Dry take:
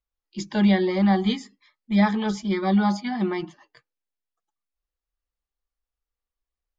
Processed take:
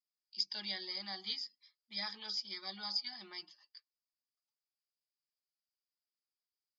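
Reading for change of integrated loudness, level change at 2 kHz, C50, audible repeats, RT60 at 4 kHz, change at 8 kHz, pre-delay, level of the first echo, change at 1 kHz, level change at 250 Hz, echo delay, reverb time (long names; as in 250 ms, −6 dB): −17.0 dB, −16.5 dB, no reverb audible, no echo audible, no reverb audible, can't be measured, no reverb audible, no echo audible, −24.0 dB, −35.5 dB, no echo audible, no reverb audible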